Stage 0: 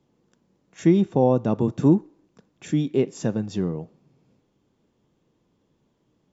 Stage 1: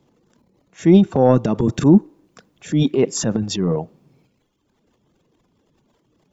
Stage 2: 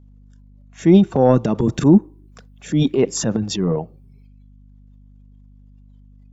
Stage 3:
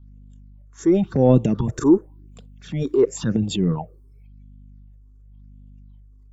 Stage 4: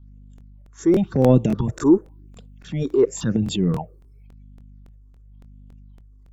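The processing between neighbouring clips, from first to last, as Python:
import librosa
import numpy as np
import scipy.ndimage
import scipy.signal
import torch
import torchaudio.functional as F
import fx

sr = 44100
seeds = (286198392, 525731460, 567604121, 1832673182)

y1 = fx.dereverb_blind(x, sr, rt60_s=1.2)
y1 = fx.transient(y1, sr, attack_db=-5, sustain_db=11)
y1 = y1 * librosa.db_to_amplitude(6.5)
y2 = fx.noise_reduce_blind(y1, sr, reduce_db=14)
y2 = fx.add_hum(y2, sr, base_hz=50, snr_db=27)
y3 = fx.phaser_stages(y2, sr, stages=6, low_hz=170.0, high_hz=1600.0, hz=0.93, feedback_pct=35)
y4 = fx.buffer_crackle(y3, sr, first_s=0.36, period_s=0.28, block=1024, kind='repeat')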